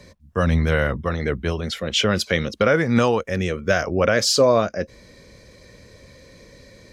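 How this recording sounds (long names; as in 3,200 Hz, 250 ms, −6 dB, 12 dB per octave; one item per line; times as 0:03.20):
background noise floor −49 dBFS
spectral slope −4.5 dB per octave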